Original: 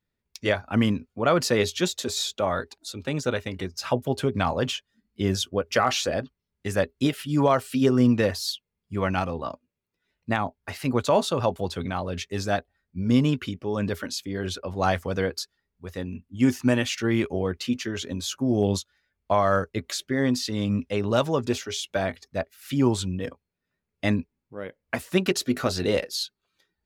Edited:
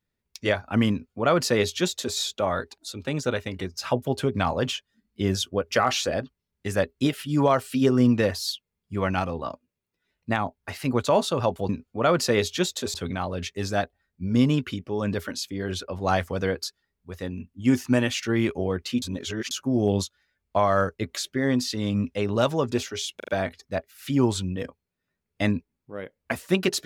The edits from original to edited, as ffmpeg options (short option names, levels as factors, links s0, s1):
-filter_complex "[0:a]asplit=8[s0][s1][s2][s3][s4][s5][s6][s7];[s0]atrim=end=11.692[s8];[s1]atrim=start=0.908:end=2.162[s9];[s2]atrim=start=11.688:end=17.772[s10];[s3]atrim=start=17.768:end=18.262,asetpts=PTS-STARTPTS,areverse[s11];[s4]atrim=start=18.258:end=21.952[s12];[s5]atrim=start=21.908:end=21.952[s13];[s6]atrim=start=21.908:end=21.952[s14];[s7]atrim=start=21.908[s15];[s8][s9]acrossfade=d=0.004:c1=hsin:c2=hsin[s16];[s16][s10]acrossfade=d=0.004:c1=hsin:c2=hsin[s17];[s17][s11]acrossfade=d=0.004:c1=hsin:c2=hsin[s18];[s18][s12]acrossfade=d=0.004:c1=hsin:c2=hsin[s19];[s19][s13]acrossfade=d=0.004:c1=hsin:c2=hsin[s20];[s20][s14]acrossfade=d=0.004:c1=hsin:c2=hsin[s21];[s21][s15]acrossfade=d=0.004:c1=hsin:c2=hsin"